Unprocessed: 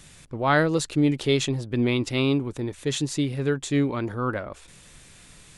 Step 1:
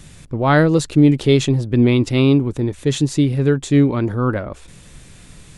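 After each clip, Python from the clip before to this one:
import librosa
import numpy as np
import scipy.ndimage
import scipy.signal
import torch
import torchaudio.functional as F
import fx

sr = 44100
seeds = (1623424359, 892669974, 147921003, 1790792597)

y = fx.low_shelf(x, sr, hz=450.0, db=8.5)
y = F.gain(torch.from_numpy(y), 3.0).numpy()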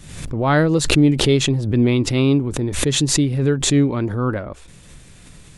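y = fx.pre_swell(x, sr, db_per_s=58.0)
y = F.gain(torch.from_numpy(y), -2.5).numpy()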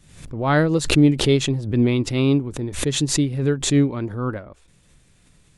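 y = fx.upward_expand(x, sr, threshold_db=-35.0, expansion=1.5)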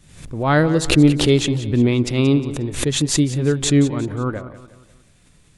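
y = fx.echo_feedback(x, sr, ms=179, feedback_pct=42, wet_db=-14.0)
y = F.gain(torch.from_numpy(y), 2.0).numpy()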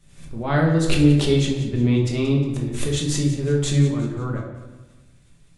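y = fx.room_shoebox(x, sr, seeds[0], volume_m3=250.0, walls='mixed', distance_m=1.2)
y = F.gain(torch.from_numpy(y), -8.5).numpy()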